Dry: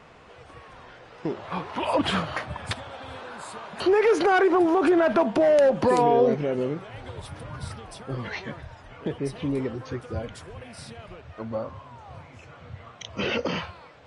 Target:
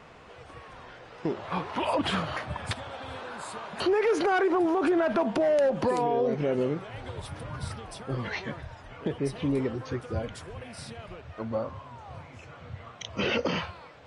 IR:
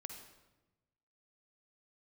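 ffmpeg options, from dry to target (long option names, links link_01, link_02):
-af "alimiter=limit=-18dB:level=0:latency=1:release=114"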